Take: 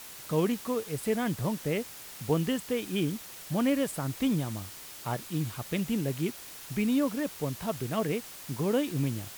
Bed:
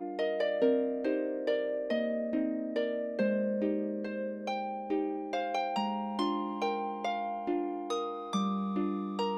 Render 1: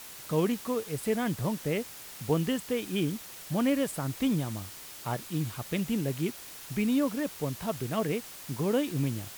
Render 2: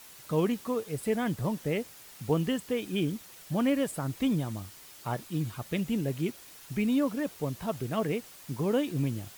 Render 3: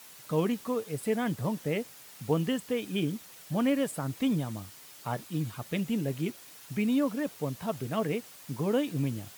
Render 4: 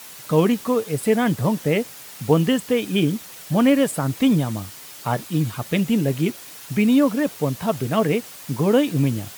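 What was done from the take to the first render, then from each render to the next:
no processing that can be heard
broadband denoise 6 dB, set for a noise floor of −46 dBFS
high-pass filter 95 Hz; notch filter 360 Hz, Q 12
level +10.5 dB

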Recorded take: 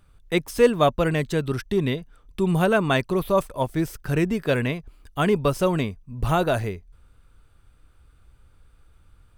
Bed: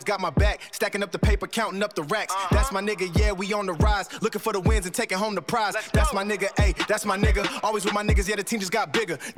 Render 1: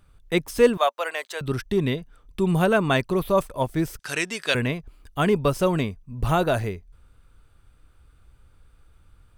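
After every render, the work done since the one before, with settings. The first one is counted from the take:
0:00.77–0:01.41: high-pass filter 610 Hz 24 dB per octave
0:03.99–0:04.55: meter weighting curve ITU-R 468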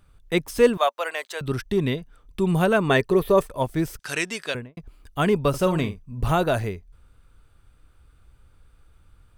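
0:02.89–0:03.47: hollow resonant body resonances 430/1,800 Hz, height 12 dB
0:04.35–0:04.77: fade out and dull
0:05.49–0:06.32: double-tracking delay 48 ms −10 dB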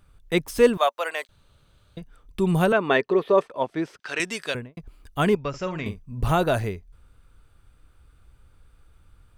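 0:01.29–0:01.97: fill with room tone
0:02.72–0:04.20: band-pass filter 280–3,700 Hz
0:05.35–0:05.86: Chebyshev low-pass with heavy ripple 7,400 Hz, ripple 9 dB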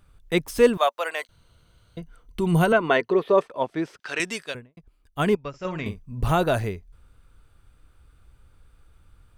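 0:01.19–0:03.11: EQ curve with evenly spaced ripples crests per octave 1.9, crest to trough 7 dB
0:04.43–0:05.65: expander for the loud parts, over −42 dBFS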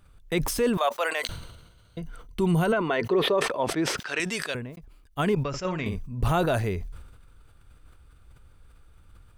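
brickwall limiter −15 dBFS, peak gain reduction 9.5 dB
level that may fall only so fast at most 51 dB per second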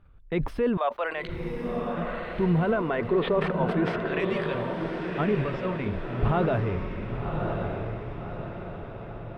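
high-frequency loss of the air 470 metres
feedback delay with all-pass diffusion 1,112 ms, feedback 50%, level −4 dB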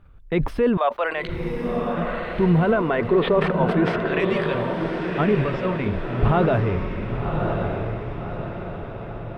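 level +5.5 dB

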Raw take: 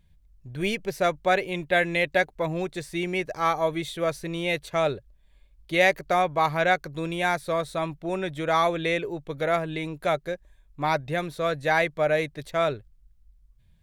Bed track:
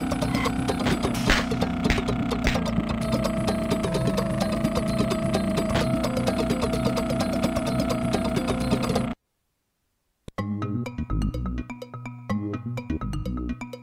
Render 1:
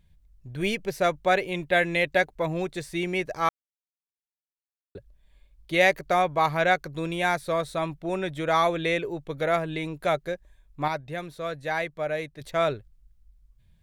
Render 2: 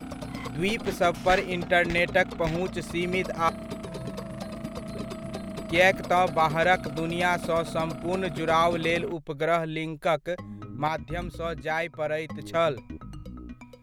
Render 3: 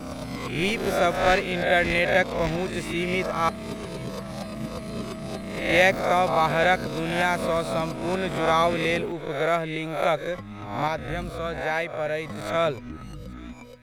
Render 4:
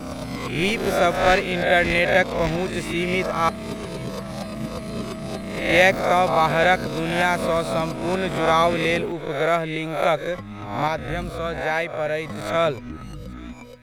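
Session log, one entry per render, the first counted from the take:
0:03.49–0:04.95: silence; 0:10.88–0:12.41: clip gain −6 dB
mix in bed track −11.5 dB
peak hold with a rise ahead of every peak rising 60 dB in 0.67 s; delay with a high-pass on its return 833 ms, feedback 49%, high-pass 1,600 Hz, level −20.5 dB
level +3 dB

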